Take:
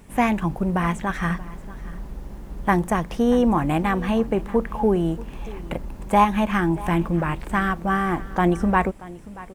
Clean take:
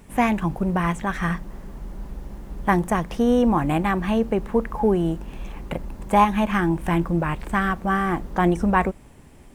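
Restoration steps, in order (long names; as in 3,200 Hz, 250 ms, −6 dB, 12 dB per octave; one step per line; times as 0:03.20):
echo removal 632 ms −19 dB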